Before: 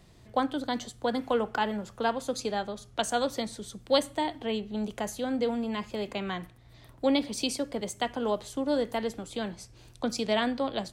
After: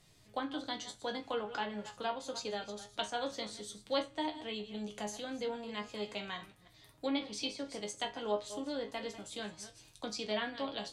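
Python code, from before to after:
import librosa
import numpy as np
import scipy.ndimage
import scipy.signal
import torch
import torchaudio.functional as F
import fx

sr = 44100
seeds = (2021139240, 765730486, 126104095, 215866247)

y = fx.reverse_delay(x, sr, ms=159, wet_db=-13.0)
y = fx.high_shelf(y, sr, hz=2200.0, db=10.5)
y = fx.env_lowpass_down(y, sr, base_hz=2700.0, full_db=-20.5)
y = fx.resonator_bank(y, sr, root=44, chord='sus4', decay_s=0.2)
y = y * librosa.db_to_amplitude(1.0)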